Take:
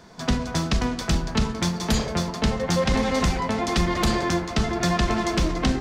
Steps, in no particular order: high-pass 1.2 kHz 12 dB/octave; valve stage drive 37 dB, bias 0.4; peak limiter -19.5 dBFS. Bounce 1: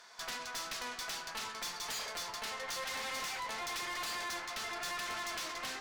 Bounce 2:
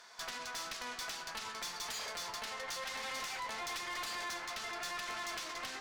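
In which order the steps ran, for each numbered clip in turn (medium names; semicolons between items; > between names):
high-pass > valve stage > peak limiter; peak limiter > high-pass > valve stage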